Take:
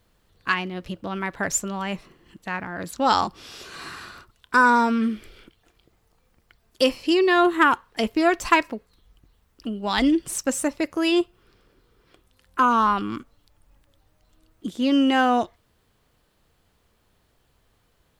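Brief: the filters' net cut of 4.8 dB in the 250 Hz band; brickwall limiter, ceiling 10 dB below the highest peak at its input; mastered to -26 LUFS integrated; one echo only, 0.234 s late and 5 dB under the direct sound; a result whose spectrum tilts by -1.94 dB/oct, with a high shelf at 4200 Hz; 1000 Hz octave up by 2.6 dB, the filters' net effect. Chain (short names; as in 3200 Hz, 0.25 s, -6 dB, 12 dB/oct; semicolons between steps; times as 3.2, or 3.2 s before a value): bell 250 Hz -6.5 dB; bell 1000 Hz +3 dB; high shelf 4200 Hz +7 dB; limiter -10.5 dBFS; echo 0.234 s -5 dB; gain -3.5 dB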